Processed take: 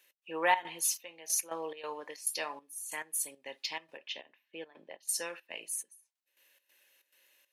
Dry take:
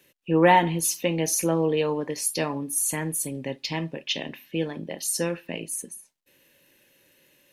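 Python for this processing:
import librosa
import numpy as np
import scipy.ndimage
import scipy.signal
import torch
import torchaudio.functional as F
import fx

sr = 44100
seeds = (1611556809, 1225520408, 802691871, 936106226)

y = scipy.signal.sosfilt(scipy.signal.butter(2, 800.0, 'highpass', fs=sr, output='sos'), x)
y = fx.step_gate(y, sr, bpm=139, pattern='x.xxx.xxx...x.x', floor_db=-12.0, edge_ms=4.5)
y = fx.lowpass(y, sr, hz=1500.0, slope=6, at=(3.97, 5.09))
y = F.gain(torch.from_numpy(y), -5.0).numpy()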